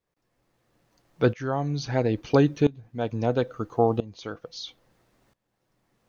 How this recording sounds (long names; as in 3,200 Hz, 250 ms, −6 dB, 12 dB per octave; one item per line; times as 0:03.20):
a quantiser's noise floor 12 bits, dither none
tremolo saw up 0.75 Hz, depth 90%